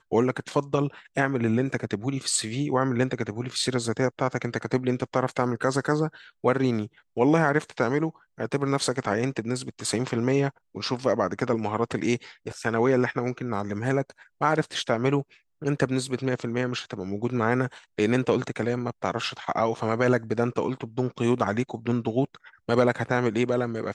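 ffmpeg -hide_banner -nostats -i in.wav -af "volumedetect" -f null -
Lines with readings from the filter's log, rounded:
mean_volume: -26.1 dB
max_volume: -7.3 dB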